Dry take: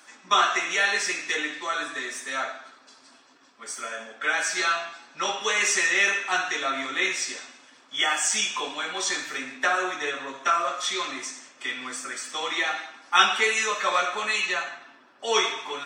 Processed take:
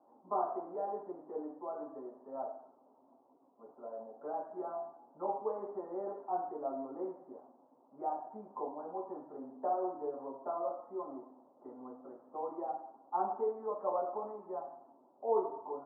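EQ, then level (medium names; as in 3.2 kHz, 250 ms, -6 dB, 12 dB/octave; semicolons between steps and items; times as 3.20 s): high-pass 280 Hz 6 dB/octave; steep low-pass 900 Hz 48 dB/octave; -3.0 dB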